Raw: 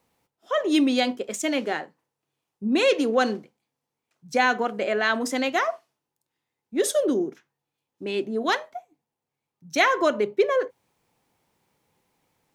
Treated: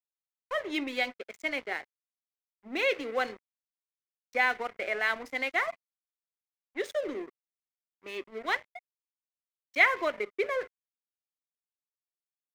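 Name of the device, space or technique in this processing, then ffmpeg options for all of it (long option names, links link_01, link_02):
pocket radio on a weak battery: -af "highpass=380,lowpass=4300,aeval=exprs='sgn(val(0))*max(abs(val(0))-0.0133,0)':channel_layout=same,equalizer=frequency=2100:width_type=o:width=0.34:gain=12,volume=-7dB"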